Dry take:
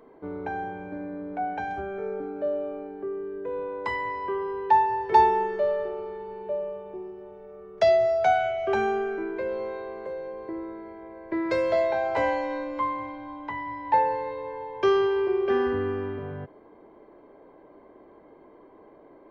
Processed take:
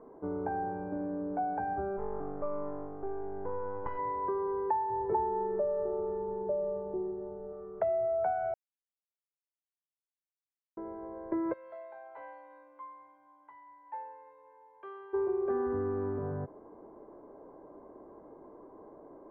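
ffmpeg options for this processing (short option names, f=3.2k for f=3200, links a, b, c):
-filter_complex "[0:a]asplit=3[a][b][c];[a]afade=t=out:st=1.96:d=0.02[d];[b]aeval=exprs='max(val(0),0)':c=same,afade=t=in:st=1.96:d=0.02,afade=t=out:st=3.97:d=0.02[e];[c]afade=t=in:st=3.97:d=0.02[f];[d][e][f]amix=inputs=3:normalize=0,asettb=1/sr,asplit=3[g][h][i];[g]atrim=end=4.904[j];[h]atrim=start=4.9:end=7.53,asetpts=PTS-STARTPTS,afade=t=in:d=0.004:c=qsin,afade=t=out:st=2.626:d=0.004:c=qsin,tiltshelf=f=770:g=5[k];[i]atrim=start=7.526[l];[j][k]acrossfade=d=0.004:c1=hsin:c2=qsin[m];[m][l]acrossfade=d=0.004:c1=qsin:c2=hsin,asplit=3[n][o][p];[n]afade=t=out:st=11.52:d=0.02[q];[o]bandpass=f=3.9k:t=q:w=2.3,afade=t=in:st=11.52:d=0.02,afade=t=out:st=15.13:d=0.02[r];[p]afade=t=in:st=15.13:d=0.02[s];[q][r][s]amix=inputs=3:normalize=0,asplit=3[t][u][v];[t]atrim=end=8.54,asetpts=PTS-STARTPTS,afade=t=out:st=8.536:d=0.004:c=hsin[w];[u]atrim=start=8.54:end=10.77,asetpts=PTS-STARTPTS,volume=0[x];[v]atrim=start=10.77,asetpts=PTS-STARTPTS,afade=t=in:d=0.004:c=hsin[y];[w][x][y]concat=n=3:v=0:a=1,acompressor=threshold=-29dB:ratio=5,lowpass=f=1.3k:w=0.5412,lowpass=f=1.3k:w=1.3066"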